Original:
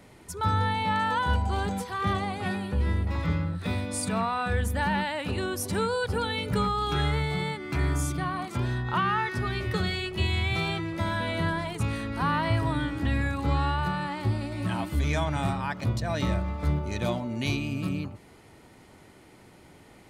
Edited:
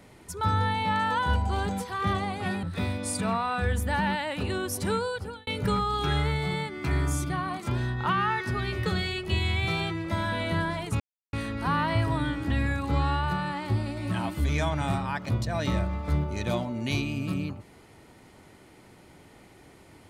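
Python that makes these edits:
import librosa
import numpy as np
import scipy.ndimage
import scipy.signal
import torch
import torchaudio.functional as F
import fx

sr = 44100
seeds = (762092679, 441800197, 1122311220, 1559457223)

y = fx.edit(x, sr, fx.cut(start_s=2.63, length_s=0.88),
    fx.fade_out_span(start_s=5.82, length_s=0.53),
    fx.insert_silence(at_s=11.88, length_s=0.33), tone=tone)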